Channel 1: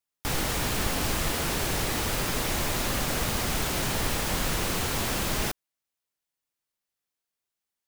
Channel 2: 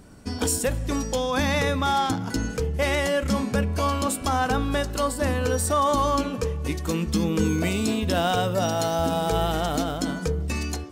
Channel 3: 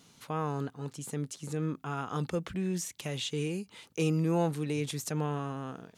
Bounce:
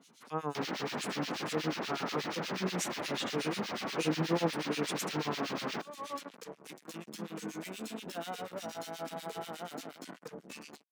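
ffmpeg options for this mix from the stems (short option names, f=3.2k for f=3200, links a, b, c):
-filter_complex "[0:a]equalizer=f=11k:t=o:w=0.49:g=-7,afwtdn=0.0141,adelay=300,volume=-2dB[a];[1:a]acrusher=bits=3:mix=0:aa=0.5,volume=-13dB[b];[2:a]volume=2dB,asplit=2[c][d];[d]apad=whole_len=481371[e];[b][e]sidechaincompress=threshold=-50dB:ratio=10:attack=11:release=266[f];[a][f][c]amix=inputs=3:normalize=0,highpass=f=180:w=0.5412,highpass=f=180:w=1.3066,acrossover=split=1800[g][h];[g]aeval=exprs='val(0)*(1-1/2+1/2*cos(2*PI*8.3*n/s))':c=same[i];[h]aeval=exprs='val(0)*(1-1/2-1/2*cos(2*PI*8.3*n/s))':c=same[j];[i][j]amix=inputs=2:normalize=0"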